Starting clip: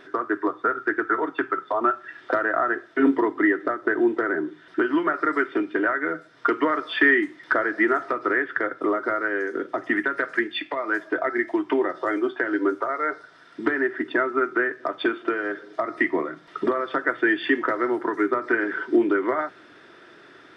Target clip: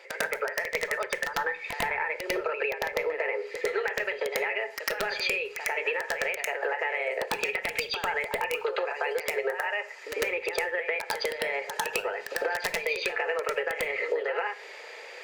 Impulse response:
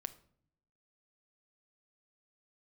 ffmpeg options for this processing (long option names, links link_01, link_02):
-filter_complex "[0:a]highpass=frequency=330:width=0.5412,highpass=frequency=330:width=1.3066,acompressor=threshold=-31dB:ratio=16,aeval=exprs='(mod(12.6*val(0)+1,2)-1)/12.6':channel_layout=same,asplit=2[link_01][link_02];[1:a]atrim=start_sample=2205,adelay=134[link_03];[link_02][link_03]afir=irnorm=-1:irlink=0,volume=10.5dB[link_04];[link_01][link_04]amix=inputs=2:normalize=0,asetrate=59535,aresample=44100,volume=-2.5dB"